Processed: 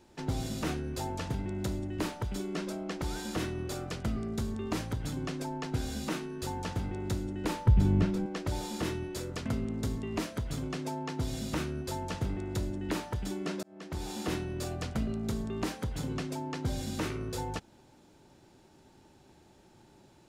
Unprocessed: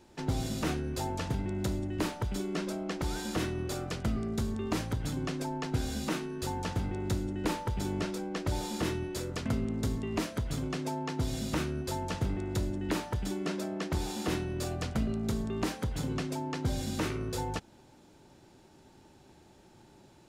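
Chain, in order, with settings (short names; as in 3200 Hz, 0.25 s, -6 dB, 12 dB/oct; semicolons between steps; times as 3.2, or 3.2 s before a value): 7.66–8.26 tone controls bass +14 dB, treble -7 dB; 13.63–14.15 fade in; gain -1.5 dB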